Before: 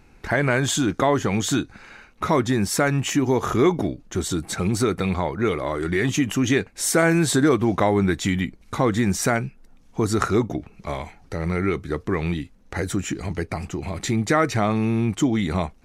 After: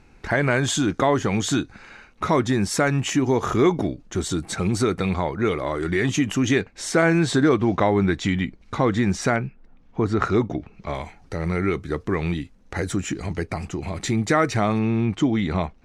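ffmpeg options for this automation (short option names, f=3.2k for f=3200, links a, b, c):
-af "asetnsamples=n=441:p=0,asendcmd='6.61 lowpass f 5300;9.36 lowpass f 2800;10.23 lowpass f 4900;10.94 lowpass f 9900;14.79 lowpass f 4500',lowpass=8.9k"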